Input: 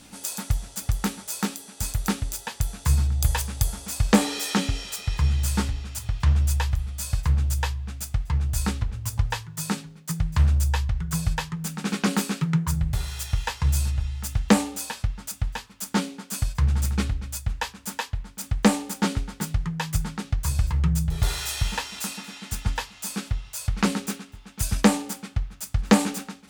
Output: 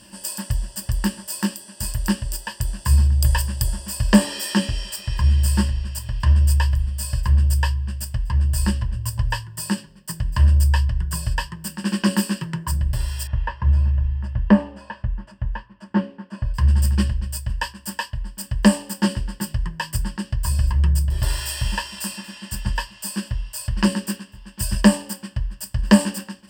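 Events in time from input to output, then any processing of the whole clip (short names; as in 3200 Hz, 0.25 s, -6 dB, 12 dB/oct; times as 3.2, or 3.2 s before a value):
13.27–16.54 LPF 1600 Hz
whole clip: ripple EQ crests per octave 1.3, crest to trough 15 dB; gain -1 dB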